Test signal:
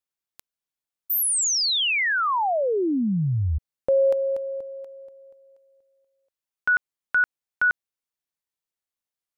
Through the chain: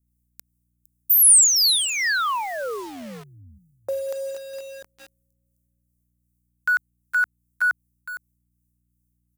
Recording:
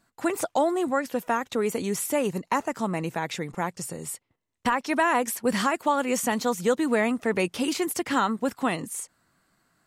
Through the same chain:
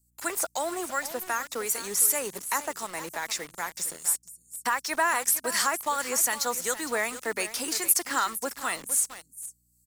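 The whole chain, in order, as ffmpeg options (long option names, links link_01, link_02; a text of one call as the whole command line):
ffmpeg -i in.wav -filter_complex "[0:a]acrossover=split=1500[link_01][link_02];[link_01]aeval=exprs='val(0)*(1-0.5/2+0.5/2*cos(2*PI*2.6*n/s))':channel_layout=same[link_03];[link_02]aeval=exprs='val(0)*(1-0.5/2-0.5/2*cos(2*PI*2.6*n/s))':channel_layout=same[link_04];[link_03][link_04]amix=inputs=2:normalize=0,highpass=98,equalizer=frequency=1600:width=0.76:gain=9,aeval=exprs='val(0)+0.00316*(sin(2*PI*60*n/s)+sin(2*PI*2*60*n/s)/2+sin(2*PI*3*60*n/s)/3+sin(2*PI*4*60*n/s)/4+sin(2*PI*5*60*n/s)/5)':channel_layout=same,bass=frequency=250:gain=-14,treble=frequency=4000:gain=2,asplit=2[link_05][link_06];[link_06]aecho=0:1:460:0.211[link_07];[link_05][link_07]amix=inputs=2:normalize=0,aexciter=amount=5.6:drive=2.9:freq=4300,acrossover=split=220|6400[link_08][link_09][link_10];[link_09]acrusher=bits=5:mix=0:aa=0.000001[link_11];[link_08][link_11][link_10]amix=inputs=3:normalize=0,volume=-6dB" out.wav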